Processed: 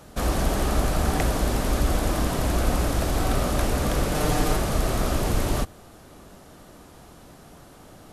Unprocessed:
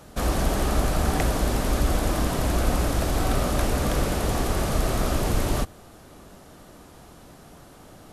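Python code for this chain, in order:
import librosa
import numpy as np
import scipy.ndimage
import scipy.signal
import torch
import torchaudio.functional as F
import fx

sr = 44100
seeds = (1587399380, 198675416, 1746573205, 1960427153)

y = fx.comb(x, sr, ms=6.6, depth=0.95, at=(4.14, 4.57))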